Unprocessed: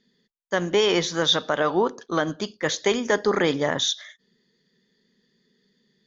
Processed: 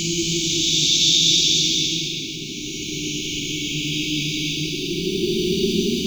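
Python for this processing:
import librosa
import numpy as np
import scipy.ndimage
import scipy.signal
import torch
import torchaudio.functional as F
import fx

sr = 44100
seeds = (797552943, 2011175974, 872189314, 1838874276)

y = fx.spec_flatten(x, sr, power=0.47)
y = fx.brickwall_bandstop(y, sr, low_hz=410.0, high_hz=2200.0)
y = fx.paulstretch(y, sr, seeds[0], factor=9.0, window_s=0.25, from_s=1.17)
y = F.gain(torch.from_numpy(y), 4.0).numpy()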